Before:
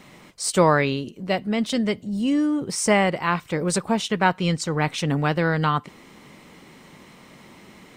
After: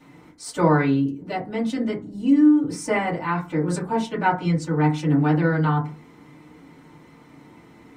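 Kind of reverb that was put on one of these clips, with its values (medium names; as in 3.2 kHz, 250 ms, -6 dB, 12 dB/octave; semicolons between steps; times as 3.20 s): FDN reverb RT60 0.32 s, low-frequency decay 1.5×, high-frequency decay 0.3×, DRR -8.5 dB; trim -12.5 dB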